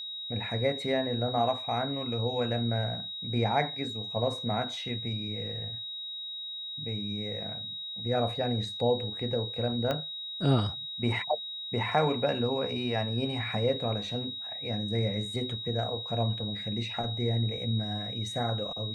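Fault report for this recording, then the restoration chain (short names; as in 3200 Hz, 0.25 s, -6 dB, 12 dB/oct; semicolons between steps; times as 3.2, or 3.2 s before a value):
tone 3800 Hz -36 dBFS
9.91 pop -17 dBFS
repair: de-click; notch 3800 Hz, Q 30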